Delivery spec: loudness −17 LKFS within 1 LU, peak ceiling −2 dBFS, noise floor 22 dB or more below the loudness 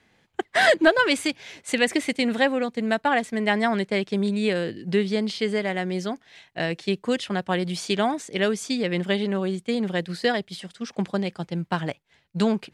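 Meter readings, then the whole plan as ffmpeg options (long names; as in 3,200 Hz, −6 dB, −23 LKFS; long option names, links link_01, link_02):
integrated loudness −24.5 LKFS; sample peak −7.0 dBFS; target loudness −17.0 LKFS
→ -af "volume=7.5dB,alimiter=limit=-2dB:level=0:latency=1"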